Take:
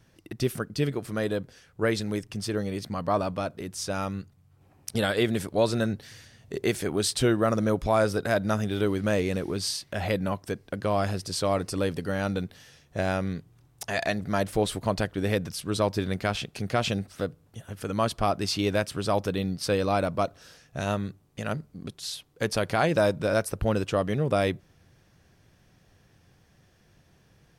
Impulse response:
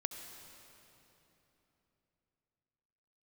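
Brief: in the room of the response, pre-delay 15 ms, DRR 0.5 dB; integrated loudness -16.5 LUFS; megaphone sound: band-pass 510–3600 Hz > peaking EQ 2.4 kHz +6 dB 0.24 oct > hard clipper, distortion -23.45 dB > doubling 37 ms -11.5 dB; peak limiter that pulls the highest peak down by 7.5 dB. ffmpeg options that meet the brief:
-filter_complex "[0:a]alimiter=limit=0.126:level=0:latency=1,asplit=2[s0][s1];[1:a]atrim=start_sample=2205,adelay=15[s2];[s1][s2]afir=irnorm=-1:irlink=0,volume=0.944[s3];[s0][s3]amix=inputs=2:normalize=0,highpass=510,lowpass=3600,equalizer=f=2400:t=o:w=0.24:g=6,asoftclip=type=hard:threshold=0.1,asplit=2[s4][s5];[s5]adelay=37,volume=0.266[s6];[s4][s6]amix=inputs=2:normalize=0,volume=5.62"

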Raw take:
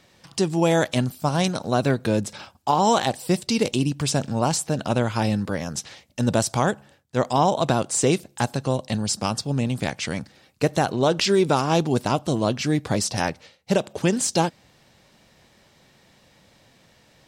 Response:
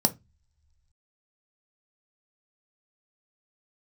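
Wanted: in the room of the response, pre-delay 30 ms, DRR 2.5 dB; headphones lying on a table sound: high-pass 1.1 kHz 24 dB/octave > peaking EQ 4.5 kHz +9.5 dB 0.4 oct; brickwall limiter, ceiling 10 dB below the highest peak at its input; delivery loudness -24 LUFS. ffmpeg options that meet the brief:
-filter_complex "[0:a]alimiter=limit=0.133:level=0:latency=1,asplit=2[s0][s1];[1:a]atrim=start_sample=2205,adelay=30[s2];[s1][s2]afir=irnorm=-1:irlink=0,volume=0.251[s3];[s0][s3]amix=inputs=2:normalize=0,highpass=f=1100:w=0.5412,highpass=f=1100:w=1.3066,equalizer=f=4500:t=o:w=0.4:g=9.5,volume=1.68"

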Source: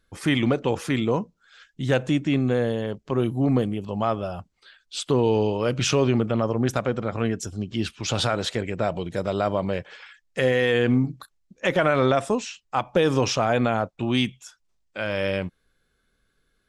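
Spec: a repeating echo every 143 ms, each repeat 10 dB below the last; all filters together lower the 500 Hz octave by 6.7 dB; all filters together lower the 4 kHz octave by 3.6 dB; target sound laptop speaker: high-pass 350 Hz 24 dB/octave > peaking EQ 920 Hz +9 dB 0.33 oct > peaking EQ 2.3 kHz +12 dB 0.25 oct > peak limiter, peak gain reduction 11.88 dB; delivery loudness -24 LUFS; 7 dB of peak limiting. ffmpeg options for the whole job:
-af "equalizer=f=500:t=o:g=-8,equalizer=f=4000:t=o:g=-6,alimiter=limit=0.112:level=0:latency=1,highpass=f=350:w=0.5412,highpass=f=350:w=1.3066,equalizer=f=920:t=o:w=0.33:g=9,equalizer=f=2300:t=o:w=0.25:g=12,aecho=1:1:143|286|429|572:0.316|0.101|0.0324|0.0104,volume=4.22,alimiter=limit=0.211:level=0:latency=1"

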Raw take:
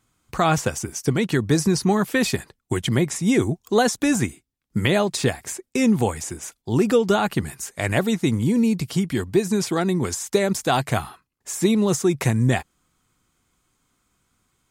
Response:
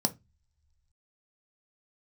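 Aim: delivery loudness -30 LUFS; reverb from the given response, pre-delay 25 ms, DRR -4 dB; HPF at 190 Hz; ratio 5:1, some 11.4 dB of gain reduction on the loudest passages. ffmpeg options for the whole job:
-filter_complex "[0:a]highpass=190,acompressor=threshold=0.0447:ratio=5,asplit=2[s0][s1];[1:a]atrim=start_sample=2205,adelay=25[s2];[s1][s2]afir=irnorm=-1:irlink=0,volume=0.794[s3];[s0][s3]amix=inputs=2:normalize=0,volume=0.316"

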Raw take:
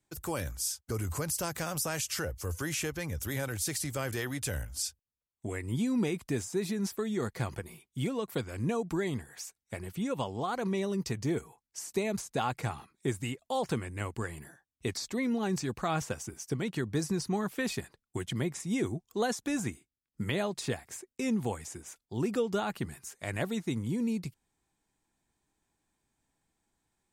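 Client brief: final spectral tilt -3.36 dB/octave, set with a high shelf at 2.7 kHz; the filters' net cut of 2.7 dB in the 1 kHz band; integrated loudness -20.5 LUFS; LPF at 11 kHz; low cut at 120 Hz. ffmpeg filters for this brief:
-af "highpass=120,lowpass=11000,equalizer=f=1000:t=o:g=-5,highshelf=f=2700:g=7.5,volume=4.22"

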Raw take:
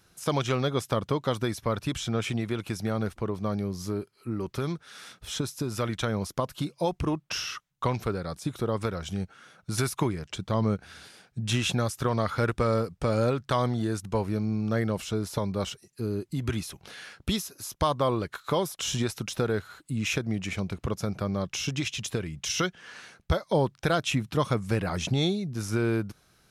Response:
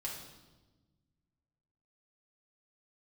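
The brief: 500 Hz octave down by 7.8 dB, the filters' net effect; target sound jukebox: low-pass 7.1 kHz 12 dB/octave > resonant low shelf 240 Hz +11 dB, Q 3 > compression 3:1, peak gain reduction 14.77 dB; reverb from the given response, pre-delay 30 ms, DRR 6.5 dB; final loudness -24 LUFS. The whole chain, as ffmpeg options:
-filter_complex "[0:a]equalizer=f=500:t=o:g=-5,asplit=2[s0][s1];[1:a]atrim=start_sample=2205,adelay=30[s2];[s1][s2]afir=irnorm=-1:irlink=0,volume=0.473[s3];[s0][s3]amix=inputs=2:normalize=0,lowpass=7100,lowshelf=f=240:t=q:w=3:g=11,acompressor=threshold=0.0501:ratio=3,volume=1.58"

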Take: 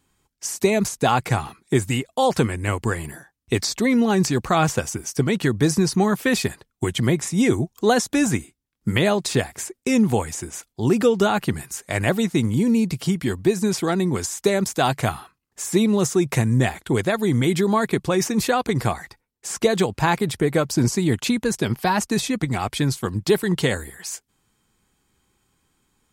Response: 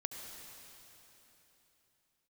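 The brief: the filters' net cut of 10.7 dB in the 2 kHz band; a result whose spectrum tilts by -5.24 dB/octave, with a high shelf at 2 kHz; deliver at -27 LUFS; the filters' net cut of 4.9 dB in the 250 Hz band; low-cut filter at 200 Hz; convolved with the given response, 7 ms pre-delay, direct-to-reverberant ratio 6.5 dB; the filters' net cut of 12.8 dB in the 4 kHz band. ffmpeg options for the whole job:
-filter_complex "[0:a]highpass=200,equalizer=f=250:t=o:g=-3.5,highshelf=f=2000:g=-9,equalizer=f=2000:t=o:g=-7.5,equalizer=f=4000:t=o:g=-5,asplit=2[s0][s1];[1:a]atrim=start_sample=2205,adelay=7[s2];[s1][s2]afir=irnorm=-1:irlink=0,volume=0.501[s3];[s0][s3]amix=inputs=2:normalize=0,volume=0.841"

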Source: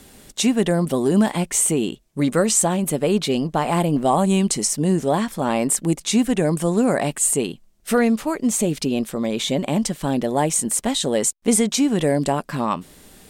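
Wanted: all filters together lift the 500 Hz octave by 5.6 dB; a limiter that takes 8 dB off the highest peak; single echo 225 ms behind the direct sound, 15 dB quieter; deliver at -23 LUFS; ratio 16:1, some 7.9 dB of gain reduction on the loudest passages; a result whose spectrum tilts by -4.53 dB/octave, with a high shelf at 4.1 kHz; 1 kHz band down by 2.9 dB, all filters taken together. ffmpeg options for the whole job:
-af "equalizer=f=500:t=o:g=9,equalizer=f=1000:t=o:g=-9,highshelf=f=4100:g=-4,acompressor=threshold=0.141:ratio=16,alimiter=limit=0.15:level=0:latency=1,aecho=1:1:225:0.178,volume=1.33"

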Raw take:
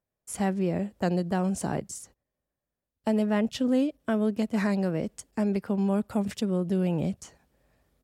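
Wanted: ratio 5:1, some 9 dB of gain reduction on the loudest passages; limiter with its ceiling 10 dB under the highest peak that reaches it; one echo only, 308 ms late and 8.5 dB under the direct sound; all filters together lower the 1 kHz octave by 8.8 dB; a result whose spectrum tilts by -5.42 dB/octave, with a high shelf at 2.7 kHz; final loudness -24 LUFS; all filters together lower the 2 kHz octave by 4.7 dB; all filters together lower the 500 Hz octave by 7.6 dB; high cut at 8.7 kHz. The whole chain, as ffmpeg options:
-af "lowpass=8700,equalizer=f=500:t=o:g=-8,equalizer=f=1000:t=o:g=-8.5,equalizer=f=2000:t=o:g=-4,highshelf=f=2700:g=4,acompressor=threshold=0.0178:ratio=5,alimiter=level_in=2.82:limit=0.0631:level=0:latency=1,volume=0.355,aecho=1:1:308:0.376,volume=6.68"

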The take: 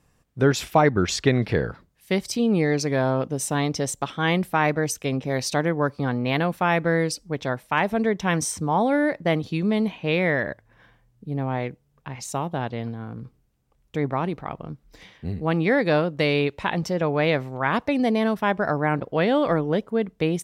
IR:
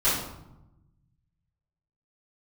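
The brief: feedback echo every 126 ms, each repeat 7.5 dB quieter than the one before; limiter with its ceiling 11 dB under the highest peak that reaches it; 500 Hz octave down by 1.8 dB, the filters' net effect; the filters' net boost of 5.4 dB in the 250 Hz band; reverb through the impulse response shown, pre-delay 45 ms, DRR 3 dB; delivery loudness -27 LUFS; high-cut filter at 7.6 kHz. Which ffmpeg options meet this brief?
-filter_complex "[0:a]lowpass=7600,equalizer=f=250:t=o:g=8,equalizer=f=500:t=o:g=-4.5,alimiter=limit=0.188:level=0:latency=1,aecho=1:1:126|252|378|504|630:0.422|0.177|0.0744|0.0312|0.0131,asplit=2[s0][s1];[1:a]atrim=start_sample=2205,adelay=45[s2];[s1][s2]afir=irnorm=-1:irlink=0,volume=0.141[s3];[s0][s3]amix=inputs=2:normalize=0,volume=0.531"

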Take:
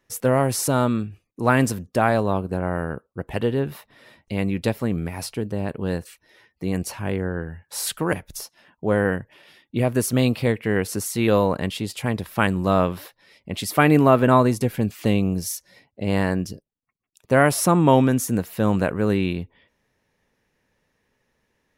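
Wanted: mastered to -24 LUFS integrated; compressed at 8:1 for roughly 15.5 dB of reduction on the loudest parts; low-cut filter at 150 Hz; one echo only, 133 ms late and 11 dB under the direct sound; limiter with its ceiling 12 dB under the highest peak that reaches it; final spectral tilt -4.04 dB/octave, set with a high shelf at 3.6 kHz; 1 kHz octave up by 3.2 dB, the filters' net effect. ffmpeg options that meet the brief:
-af "highpass=150,equalizer=f=1000:t=o:g=3.5,highshelf=f=3600:g=6,acompressor=threshold=0.0562:ratio=8,alimiter=limit=0.0794:level=0:latency=1,aecho=1:1:133:0.282,volume=3.16"

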